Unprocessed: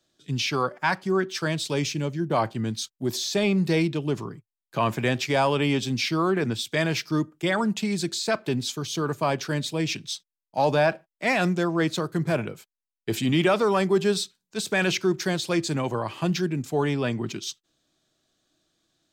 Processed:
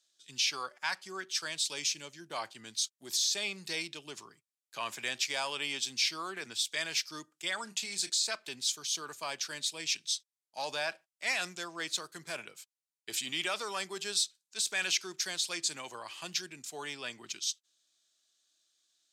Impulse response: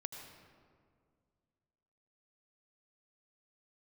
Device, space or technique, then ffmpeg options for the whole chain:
piezo pickup straight into a mixer: -filter_complex "[0:a]asettb=1/sr,asplit=3[a][b][c];[a]atrim=end=7.644[d];[b]atrim=start=7.64:end=8.1,asetpts=PTS-STARTPTS,afade=t=in:d=0.004:c=qsin,afade=t=out:st=0.456:d=0.004:c=qsin,asplit=2[e][f];[f]adelay=31,volume=-9.5dB[g];[e][g]amix=inputs=2:normalize=0,atrim=end_sample=20286[h];[c]atrim=start=8.096[i];[d][h]acrossfade=d=0.004:c1=hsin:c2=qsin[j];[j][i]acrossfade=d=0.004:c1=qsin:c2=hsin,lowpass=8.4k,aderivative,volume=4dB"

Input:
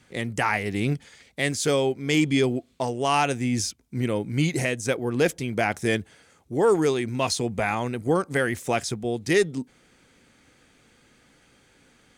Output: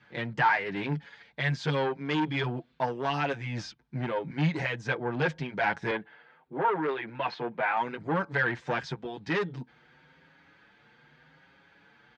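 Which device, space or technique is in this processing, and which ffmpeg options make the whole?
barber-pole flanger into a guitar amplifier: -filter_complex "[0:a]asplit=2[a][b];[b]adelay=6.6,afreqshift=0.84[c];[a][c]amix=inputs=2:normalize=1,asoftclip=type=tanh:threshold=-23.5dB,highpass=76,equalizer=f=100:t=q:w=4:g=-10,equalizer=f=150:t=q:w=4:g=8,equalizer=f=240:t=q:w=4:g=-5,equalizer=f=380:t=q:w=4:g=-3,equalizer=f=910:t=q:w=4:g=9,equalizer=f=1.6k:t=q:w=4:g=9,lowpass=f=4.2k:w=0.5412,lowpass=f=4.2k:w=1.3066,asettb=1/sr,asplit=3[d][e][f];[d]atrim=end=5.914[g];[e]atrim=start=5.91:end=7.77,asetpts=PTS-STARTPTS,afade=t=in:d=0.004:c=qsin,afade=t=out:st=1.856:d=0.004:c=qsin,acrossover=split=210 3700:gain=0.158 1 0.0708[h][i][j];[h][i][j]amix=inputs=3:normalize=0[k];[f]atrim=start=7.766[l];[g][k]acrossfade=d=0.004:c1=hsin:c2=qsin[m];[m][l]acrossfade=d=0.004:c1=qsin:c2=hsin"

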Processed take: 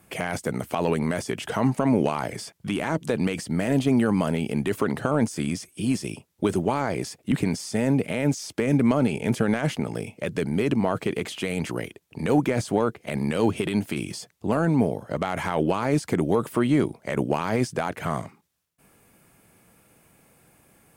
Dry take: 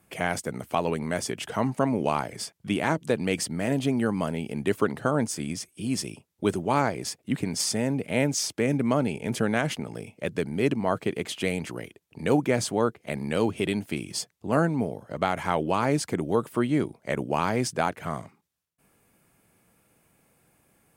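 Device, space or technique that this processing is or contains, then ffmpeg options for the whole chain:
de-esser from a sidechain: -filter_complex "[0:a]asplit=2[a][b];[b]highpass=f=6.7k:p=1,apad=whole_len=924716[c];[a][c]sidechaincompress=threshold=-44dB:ratio=6:attack=3:release=33,volume=6.5dB"

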